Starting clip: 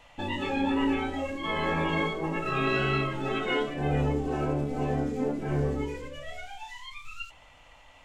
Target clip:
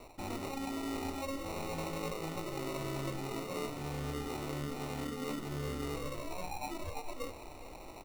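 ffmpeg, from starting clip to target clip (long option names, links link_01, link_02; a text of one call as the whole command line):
ffmpeg -i in.wav -af "areverse,acompressor=threshold=-41dB:ratio=12,areverse,acrusher=samples=27:mix=1:aa=0.000001,aecho=1:1:418:0.188,volume=5.5dB" out.wav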